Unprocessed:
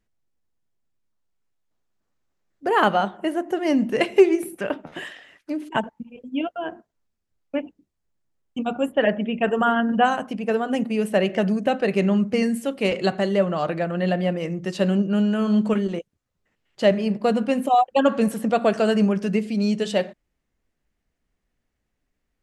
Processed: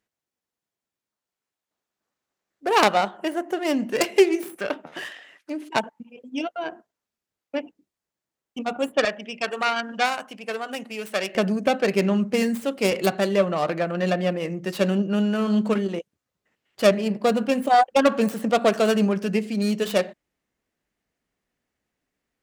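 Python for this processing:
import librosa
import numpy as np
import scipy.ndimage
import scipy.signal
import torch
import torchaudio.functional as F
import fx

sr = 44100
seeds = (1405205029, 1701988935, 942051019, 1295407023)

y = fx.tracing_dist(x, sr, depth_ms=0.33)
y = fx.highpass(y, sr, hz=fx.steps((0.0, 410.0), (9.05, 1300.0), (11.35, 210.0)), slope=6)
y = y * librosa.db_to_amplitude(1.0)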